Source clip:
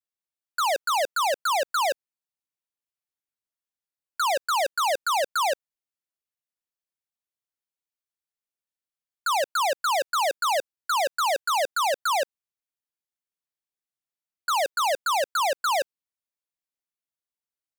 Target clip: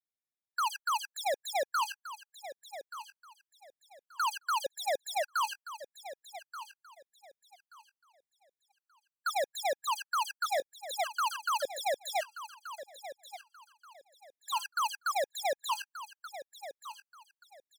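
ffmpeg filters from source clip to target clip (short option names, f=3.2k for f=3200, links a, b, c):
-filter_complex "[0:a]asettb=1/sr,asplit=3[a][b][c];[a]atrim=end=12.224[d];[b]atrim=start=12.22:end=14.63,asetpts=PTS-STARTPTS,afade=t=in:d=0.004:c=qsin,afade=t=out:st=2.406:d=0.004:c=qsin,bandreject=f=341.3:t=h:w=4,bandreject=f=682.6:t=h:w=4,bandreject=f=1.0239k:t=h:w=4,bandreject=f=1.3652k:t=h:w=4,bandreject=f=1.7065k:t=h:w=4,bandreject=f=2.0478k:t=h:w=4,bandreject=f=2.3891k:t=h:w=4,bandreject=f=2.7304k:t=h:w=4,bandreject=f=3.0717k:t=h:w=4,bandreject=f=3.413k:t=h:w=4,bandreject=f=3.7543k:t=h:w=4,bandreject=f=4.0956k:t=h:w=4,bandreject=f=4.4369k:t=h:w=4,bandreject=f=4.7782k:t=h:w=4,bandreject=f=5.1195k:t=h:w=4,bandreject=f=5.4608k:t=h:w=4,bandreject=f=5.8021k:t=h:w=4,bandreject=f=6.1434k:t=h:w=4,bandreject=f=6.4847k:t=h:w=4,bandreject=f=6.826k:t=h:w=4,bandreject=f=7.1673k:t=h:w=4,bandreject=f=7.5086k:t=h:w=4,bandreject=f=7.8499k:t=h:w=4,bandreject=f=8.1912k:t=h:w=4,bandreject=f=8.5325k:t=h:w=4,bandreject=f=8.8738k:t=h:w=4,bandreject=f=9.2151k:t=h:w=4,bandreject=f=9.5564k:t=h:w=4,bandreject=f=9.8977k:t=h:w=4,bandreject=f=10.239k:t=h:w=4,bandreject=f=10.5803k:t=h:w=4,bandreject=f=10.9216k:t=h:w=4,bandreject=f=11.2629k:t=h:w=4,bandreject=f=11.6042k:t=h:w=4,bandreject=f=11.9455k:t=h:w=4,bandreject=f=12.2868k:t=h:w=4,bandreject=f=12.6281k:t=h:w=4,bandreject=f=12.9694k:t=h:w=4,bandreject=f=13.3107k:t=h:w=4,bandreject=f=13.652k:t=h:w=4[e];[c]atrim=start=14.626[f];[d][e]acrossfade=d=0.004:c1=hsin:c2=qsin[g];[g][f]acrossfade=d=0.004:c1=qsin:c2=hsin,aecho=1:1:1180|2360|3540:0.224|0.0537|0.0129,afftfilt=real='re*gt(sin(2*PI*0.86*pts/sr)*(1-2*mod(floor(b*sr/1024/820),2)),0)':imag='im*gt(sin(2*PI*0.86*pts/sr)*(1-2*mod(floor(b*sr/1024/820),2)),0)':win_size=1024:overlap=0.75,volume=-5.5dB"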